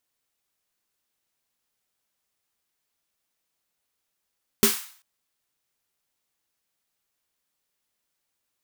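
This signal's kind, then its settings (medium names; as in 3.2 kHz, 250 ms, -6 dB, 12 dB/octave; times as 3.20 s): snare drum length 0.39 s, tones 220 Hz, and 400 Hz, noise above 940 Hz, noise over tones -1 dB, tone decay 0.17 s, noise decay 0.49 s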